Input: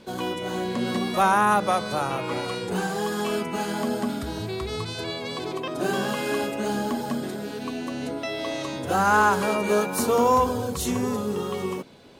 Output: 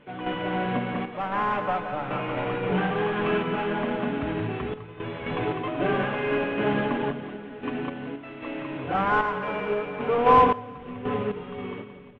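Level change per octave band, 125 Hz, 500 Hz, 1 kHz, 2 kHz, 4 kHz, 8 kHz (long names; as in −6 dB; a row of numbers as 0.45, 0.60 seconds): +0.5 dB, −1.0 dB, −1.0 dB, −1.5 dB, −6.5 dB, below −35 dB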